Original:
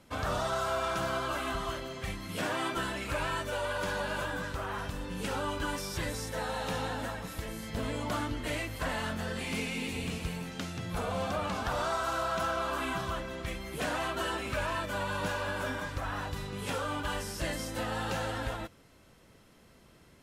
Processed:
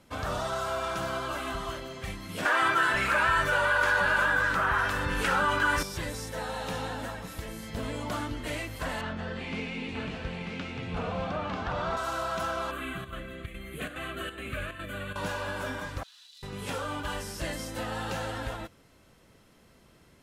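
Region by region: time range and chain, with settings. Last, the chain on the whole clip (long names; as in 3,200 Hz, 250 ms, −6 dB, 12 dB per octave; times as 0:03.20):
0:02.45–0:05.83: parametric band 1,500 Hz +12.5 dB 1.2 octaves + multiband delay without the direct sound highs, lows 170 ms, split 270 Hz + envelope flattener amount 50%
0:09.01–0:11.97: low-pass filter 3,400 Hz + single-tap delay 941 ms −4.5 dB
0:12.71–0:15.16: parametric band 1,100 Hz +11.5 dB 0.29 octaves + square-wave tremolo 2.4 Hz, depth 60%, duty 80% + phaser with its sweep stopped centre 2,300 Hz, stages 4
0:16.03–0:16.43: spike at every zero crossing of −33.5 dBFS + four-pole ladder band-pass 4,300 Hz, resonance 60%
whole clip: no processing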